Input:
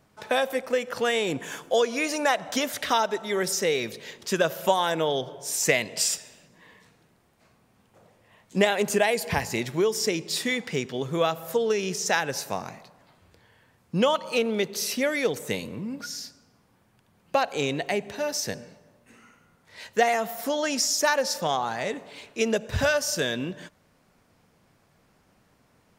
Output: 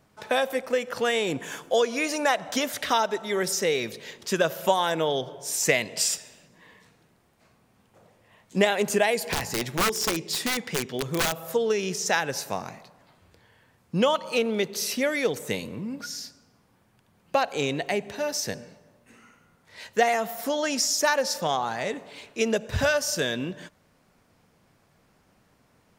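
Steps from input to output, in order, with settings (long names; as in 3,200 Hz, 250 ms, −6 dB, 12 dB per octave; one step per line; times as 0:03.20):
0:09.22–0:11.47: wrap-around overflow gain 18.5 dB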